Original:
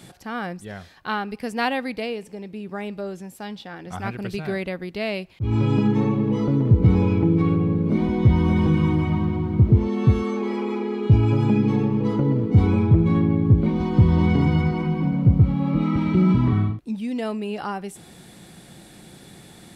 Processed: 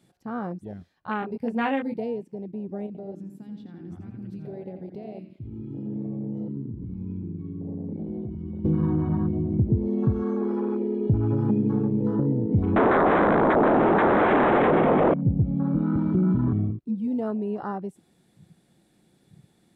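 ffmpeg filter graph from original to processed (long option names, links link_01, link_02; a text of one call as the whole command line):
ffmpeg -i in.wav -filter_complex "[0:a]asettb=1/sr,asplit=3[link_01][link_02][link_03];[link_01]atrim=end=1.204[link_04];[link_02]atrim=start=1.2:end=1.99,asetpts=PTS-STARTPTS,afade=type=in:duration=0.004:curve=qsin,afade=type=out:start_time=0.786:duration=0.004:curve=qsin,asplit=2[link_05][link_06];[link_06]adelay=22,volume=-3.5dB[link_07];[link_05][link_07]amix=inputs=2:normalize=0,atrim=end_sample=34839,acrossover=split=4300[link_08][link_09];[link_09]acompressor=threshold=-45dB:ratio=4:attack=1:release=60[link_10];[link_08][link_10]amix=inputs=2:normalize=0[link_11];[link_03]atrim=start=1.986[link_12];[link_04][link_11]acrossfade=duration=0.004:curve1=hsin:curve2=qsin[link_13];[link_13][link_12]acrossfade=duration=0.004:curve1=qsin:curve2=hsin,asettb=1/sr,asplit=3[link_14][link_15][link_16];[link_14]atrim=end=2.864[link_17];[link_15]atrim=start=2.86:end=8.65,asetpts=PTS-STARTPTS,afade=type=in:duration=0.004:curve=qsin,afade=type=out:start_time=5.786:duration=0.004:curve=qsin,acompressor=threshold=-33dB:ratio=6:attack=3.2:release=140:knee=1:detection=peak,asplit=2[link_18][link_19];[link_19]adelay=86,lowpass=frequency=4000:poles=1,volume=-5.5dB,asplit=2[link_20][link_21];[link_21]adelay=86,lowpass=frequency=4000:poles=1,volume=0.53,asplit=2[link_22][link_23];[link_23]adelay=86,lowpass=frequency=4000:poles=1,volume=0.53,asplit=2[link_24][link_25];[link_25]adelay=86,lowpass=frequency=4000:poles=1,volume=0.53,asplit=2[link_26][link_27];[link_27]adelay=86,lowpass=frequency=4000:poles=1,volume=0.53,asplit=2[link_28][link_29];[link_29]adelay=86,lowpass=frequency=4000:poles=1,volume=0.53,asplit=2[link_30][link_31];[link_31]adelay=86,lowpass=frequency=4000:poles=1,volume=0.53[link_32];[link_18][link_20][link_22][link_24][link_26][link_28][link_30][link_32]amix=inputs=8:normalize=0,atrim=end_sample=255339[link_33];[link_16]atrim=start=8.646[link_34];[link_17][link_33]acrossfade=duration=0.004:curve1=hsin:curve2=qsin[link_35];[link_35][link_34]acrossfade=duration=0.004:curve1=qsin:curve2=hsin,asettb=1/sr,asplit=3[link_36][link_37][link_38];[link_36]atrim=end=12.764[link_39];[link_37]atrim=start=12.76:end=15.14,asetpts=PTS-STARTPTS,afade=type=in:duration=0.004:curve=qsin,afade=type=out:start_time=2.376:duration=0.004:curve=qsin,aeval=exprs='0.501*sin(PI/2*8.91*val(0)/0.501)':channel_layout=same,acrossover=split=3500[link_40][link_41];[link_41]acompressor=threshold=-33dB:ratio=4:attack=1:release=60[link_42];[link_40][link_42]amix=inputs=2:normalize=0,acrossover=split=210 2400:gain=0.2 1 0.0794[link_43][link_44][link_45];[link_43][link_44][link_45]amix=inputs=3:normalize=0[link_46];[link_38]atrim=start=15.136[link_47];[link_39][link_46]acrossfade=duration=0.004:curve1=hsin:curve2=qsin[link_48];[link_48][link_47]acrossfade=duration=0.004:curve1=qsin:curve2=hsin,afwtdn=0.0355,equalizer=frequency=270:width_type=o:width=2.3:gain=5.5,acompressor=threshold=-17dB:ratio=2,volume=-4.5dB" out.wav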